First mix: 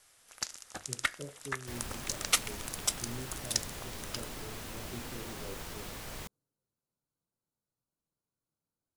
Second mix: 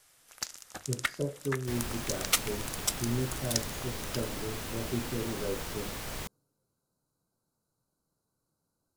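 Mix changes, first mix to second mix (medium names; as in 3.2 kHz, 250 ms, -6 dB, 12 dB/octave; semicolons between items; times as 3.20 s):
speech +11.5 dB; first sound: remove brick-wall FIR low-pass 12 kHz; second sound +4.5 dB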